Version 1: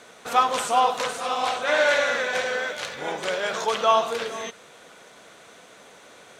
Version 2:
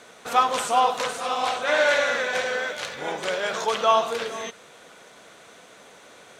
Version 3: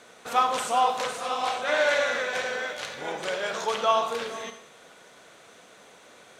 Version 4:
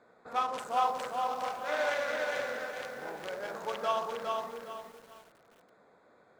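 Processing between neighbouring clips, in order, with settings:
no audible change
Schroeder reverb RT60 0.67 s, combs from 30 ms, DRR 9.5 dB; trim -3.5 dB
local Wiener filter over 15 samples; bit-crushed delay 409 ms, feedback 35%, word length 8-bit, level -3 dB; trim -8 dB

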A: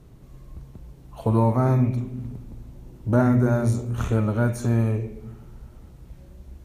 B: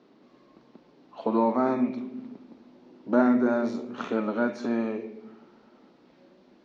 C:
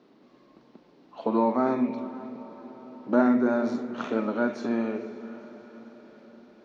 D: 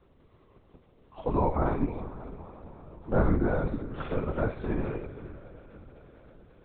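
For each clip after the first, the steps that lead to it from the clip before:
elliptic band-pass 240–4800 Hz, stop band 40 dB
echo that smears into a reverb 493 ms, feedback 57%, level -15.5 dB
LPC vocoder at 8 kHz whisper; trim -2.5 dB

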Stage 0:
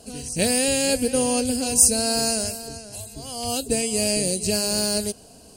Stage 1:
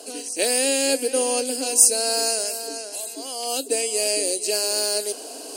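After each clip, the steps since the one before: Chebyshev high-pass 280 Hz, order 5; reverse; upward compressor, threshold -25 dBFS; reverse; trim +1 dB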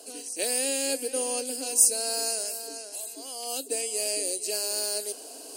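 treble shelf 9.6 kHz +8 dB; trim -8.5 dB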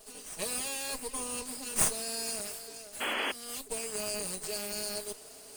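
comb filter that takes the minimum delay 4.8 ms; painted sound noise, 3.00–3.32 s, 210–3400 Hz -27 dBFS; trim -5.5 dB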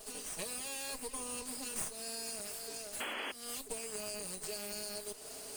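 compression 4:1, threshold -43 dBFS, peak gain reduction 17.5 dB; trim +3.5 dB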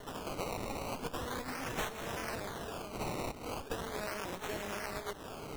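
decimation with a swept rate 18×, swing 100% 0.39 Hz; trim +2.5 dB

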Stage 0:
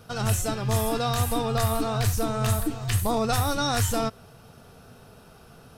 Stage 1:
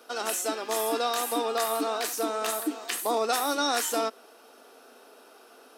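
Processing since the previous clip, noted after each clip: steep high-pass 270 Hz 48 dB/octave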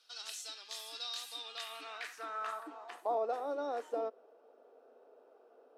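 band-pass sweep 4.2 kHz -> 520 Hz, 1.32–3.38 s; trim -3.5 dB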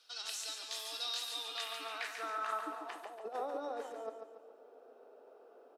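compressor with a negative ratio -39 dBFS, ratio -0.5; on a send: feedback delay 142 ms, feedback 42%, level -6.5 dB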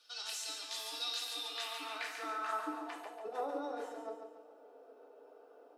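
FDN reverb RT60 0.37 s, low-frequency decay 1.1×, high-frequency decay 1×, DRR 2 dB; trim -2 dB

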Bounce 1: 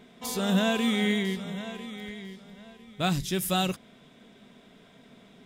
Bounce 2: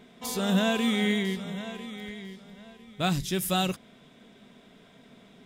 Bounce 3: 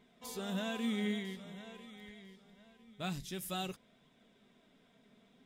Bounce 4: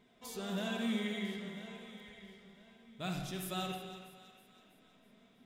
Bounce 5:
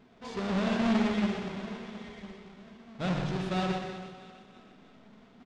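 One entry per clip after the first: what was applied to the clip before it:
no audible change
flange 0.49 Hz, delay 0.9 ms, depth 4.1 ms, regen +68%; trim -8 dB
two-band feedback delay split 980 Hz, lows 188 ms, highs 324 ms, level -14 dB; reverberation RT60 1.2 s, pre-delay 48 ms, DRR 2 dB; trim -1 dB
square wave that keeps the level; Gaussian low-pass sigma 1.7 samples; on a send: delay 123 ms -7 dB; on the sum: trim +3.5 dB

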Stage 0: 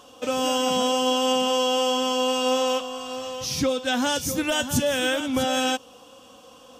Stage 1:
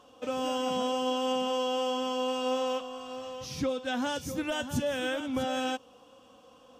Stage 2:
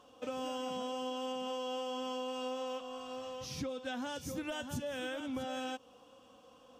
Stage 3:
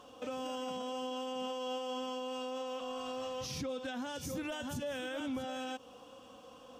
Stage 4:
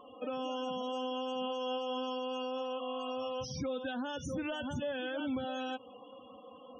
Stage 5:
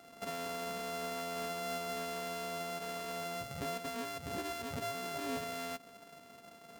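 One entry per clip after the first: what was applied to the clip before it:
treble shelf 3.6 kHz -9.5 dB; trim -6.5 dB
compression, threshold -32 dBFS, peak gain reduction 7.5 dB; trim -3.5 dB
peak limiter -36.5 dBFS, peak gain reduction 8.5 dB; trim +5.5 dB
loudest bins only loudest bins 32; trim +2.5 dB
sorted samples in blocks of 64 samples; trim -3 dB

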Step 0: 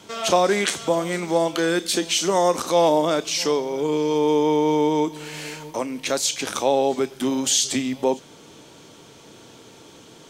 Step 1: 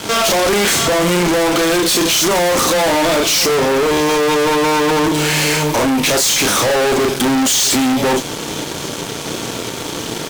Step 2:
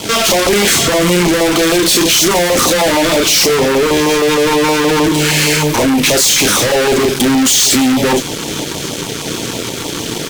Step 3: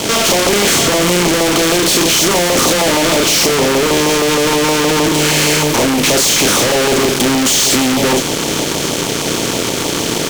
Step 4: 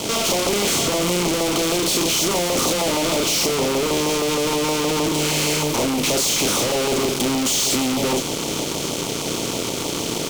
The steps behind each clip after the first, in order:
doubling 34 ms -7 dB; fuzz box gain 40 dB, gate -48 dBFS
LFO notch saw down 6.4 Hz 500–1700 Hz; trim +4 dB
spectral levelling over time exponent 0.6; trim -4.5 dB
peaking EQ 1.7 kHz -8.5 dB 0.42 oct; trim -7.5 dB

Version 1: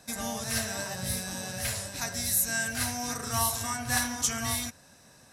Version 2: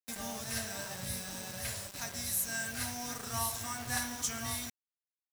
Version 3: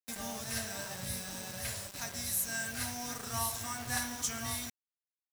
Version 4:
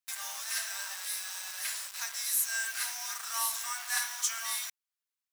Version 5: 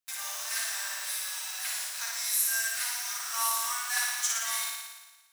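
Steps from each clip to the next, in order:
bit crusher 6-bit; trim -7 dB
no audible change
high-pass 1 kHz 24 dB/octave; trim +4 dB
flutter echo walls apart 9.8 m, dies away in 1.2 s

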